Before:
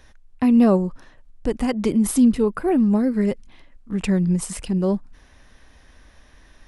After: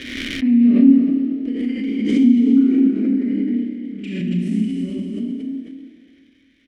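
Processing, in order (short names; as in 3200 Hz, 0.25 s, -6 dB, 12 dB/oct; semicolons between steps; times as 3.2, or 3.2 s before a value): 1.94–2.83 LPF 6800 Hz 24 dB/oct; 4.2–4.62 low shelf 380 Hz +10.5 dB; frequency-shifting echo 0.283 s, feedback 35%, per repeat +38 Hz, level -6 dB; Schroeder reverb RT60 1.7 s, combs from 26 ms, DRR -6 dB; crackle 270/s -35 dBFS; vowel filter i; backwards sustainer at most 42 dB/s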